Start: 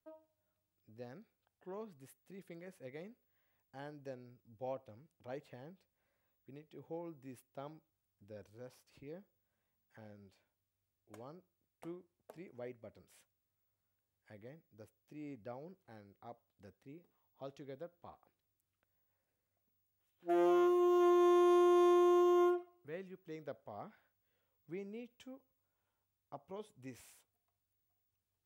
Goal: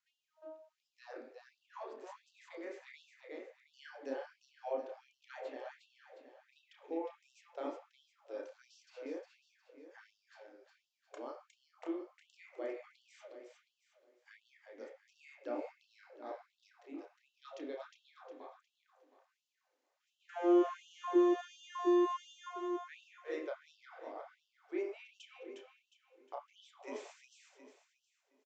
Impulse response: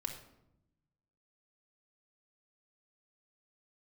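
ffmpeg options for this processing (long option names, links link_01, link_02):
-filter_complex "[0:a]acrossover=split=400[link_01][link_02];[link_02]acompressor=threshold=-44dB:ratio=6[link_03];[link_01][link_03]amix=inputs=2:normalize=0,aecho=1:1:359|718|1077|1436|1795:0.562|0.208|0.077|0.0285|0.0105,asplit=2[link_04][link_05];[1:a]atrim=start_sample=2205,lowpass=3000,adelay=30[link_06];[link_05][link_06]afir=irnorm=-1:irlink=0,volume=1dB[link_07];[link_04][link_07]amix=inputs=2:normalize=0,aresample=16000,aresample=44100,afftfilt=real='re*gte(b*sr/1024,240*pow(2700/240,0.5+0.5*sin(2*PI*1.4*pts/sr)))':imag='im*gte(b*sr/1024,240*pow(2700/240,0.5+0.5*sin(2*PI*1.4*pts/sr)))':win_size=1024:overlap=0.75,volume=4.5dB"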